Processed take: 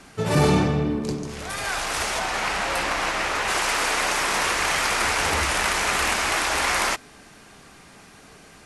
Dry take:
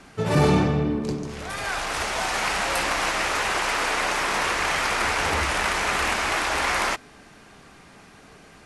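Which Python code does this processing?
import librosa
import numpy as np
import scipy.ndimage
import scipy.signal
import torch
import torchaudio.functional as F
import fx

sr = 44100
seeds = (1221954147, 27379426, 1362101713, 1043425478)

y = fx.high_shelf(x, sr, hz=5100.0, db=fx.steps((0.0, 6.5), (2.18, -3.5), (3.47, 7.5)))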